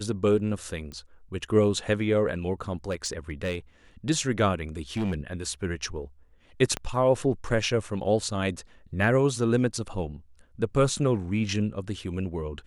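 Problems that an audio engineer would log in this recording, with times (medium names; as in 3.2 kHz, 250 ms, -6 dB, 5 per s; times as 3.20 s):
0.92 s: pop -27 dBFS
2.90–3.55 s: clipped -24 dBFS
4.80–5.21 s: clipped -24 dBFS
6.77 s: pop -15 dBFS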